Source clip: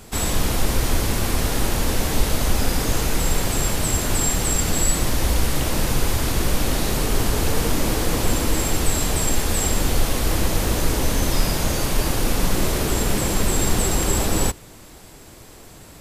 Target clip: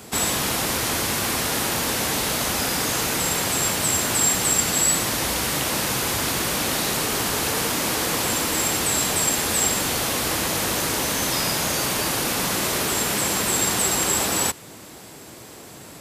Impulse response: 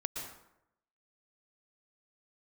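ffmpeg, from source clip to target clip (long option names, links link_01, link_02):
-filter_complex "[0:a]highpass=130,acrossover=split=780|7000[link_01][link_02][link_03];[link_01]acompressor=threshold=-31dB:ratio=6[link_04];[link_04][link_02][link_03]amix=inputs=3:normalize=0,volume=3.5dB"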